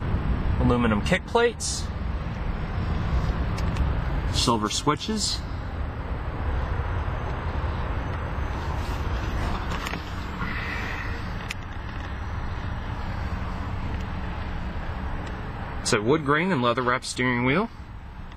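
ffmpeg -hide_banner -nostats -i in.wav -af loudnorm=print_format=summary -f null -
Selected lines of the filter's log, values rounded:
Input Integrated:    -26.8 LUFS
Input True Peak:      -6.7 dBTP
Input LRA:             7.1 LU
Input Threshold:     -36.9 LUFS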